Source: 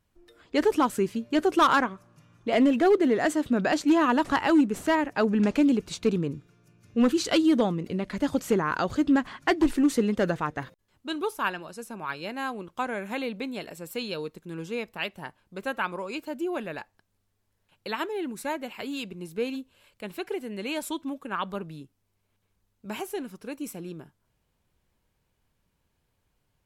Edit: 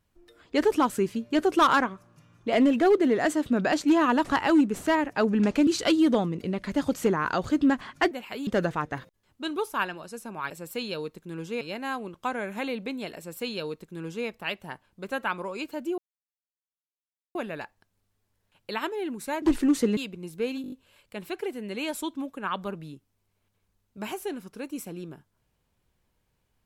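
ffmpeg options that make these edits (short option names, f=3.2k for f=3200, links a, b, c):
-filter_complex "[0:a]asplit=14[a][b][c][d][e][f][g][h][i][j][k][l][m][n];[a]atrim=end=5.672[o];[b]atrim=start=7.128:end=9.572[p];[c]atrim=start=18.588:end=18.952[q];[d]atrim=start=10.118:end=12.152[r];[e]atrim=start=13.698:end=14.812[s];[f]atrim=start=12.148:end=16.52,asetpts=PTS-STARTPTS,afade=t=out:st=4.368:d=0.004:c=hsin,apad=pad_dur=1.37[t];[g]atrim=start=16.52:end=18.592,asetpts=PTS-STARTPTS,afade=t=in:d=0.004:c=hsin[u];[h]atrim=start=9.568:end=10.122[v];[i]atrim=start=18.948:end=19.622[w];[j]atrim=start=19.598:end=19.622[x];[k]atrim=start=19.598:end=19.622[y];[l]atrim=start=19.598:end=19.622[z];[m]atrim=start=19.598:end=19.622[aa];[n]atrim=start=19.598[ab];[o][p]acrossfade=d=0.004:c1=hsin:c2=hsin[ac];[ac][q]acrossfade=d=0.004:c1=hsin:c2=hsin[ad];[ad][r]acrossfade=d=0.004:c1=hsin:c2=hsin[ae];[ae][s]acrossfade=d=0.004:c1=hsin:c2=hsin[af];[t][u]concat=n=2:v=0:a=1[ag];[af][ag]acrossfade=d=0.004:c1=hsin:c2=hsin[ah];[ah][v]acrossfade=d=0.004:c1=hsin:c2=hsin[ai];[ai][w]acrossfade=d=0.004:c1=hsin:c2=hsin[aj];[aj][x]acrossfade=d=0.004:c1=hsin:c2=hsin[ak];[ak][y]acrossfade=d=0.004:c1=hsin:c2=hsin[al];[al][z]acrossfade=d=0.004:c1=hsin:c2=hsin[am];[am][aa]acrossfade=d=0.004:c1=hsin:c2=hsin[an];[an][ab]acrossfade=d=0.004:c1=hsin:c2=hsin"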